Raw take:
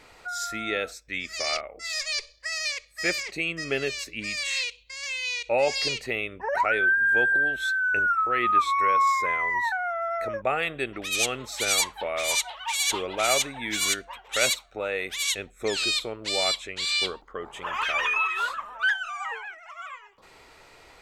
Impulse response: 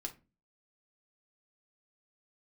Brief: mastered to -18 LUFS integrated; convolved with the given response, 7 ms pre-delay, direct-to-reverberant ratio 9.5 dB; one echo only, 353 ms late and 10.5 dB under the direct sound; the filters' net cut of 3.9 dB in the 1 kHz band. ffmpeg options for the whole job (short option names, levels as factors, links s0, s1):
-filter_complex "[0:a]equalizer=f=1000:t=o:g=-5,aecho=1:1:353:0.299,asplit=2[s0][s1];[1:a]atrim=start_sample=2205,adelay=7[s2];[s1][s2]afir=irnorm=-1:irlink=0,volume=0.422[s3];[s0][s3]amix=inputs=2:normalize=0,volume=2.51"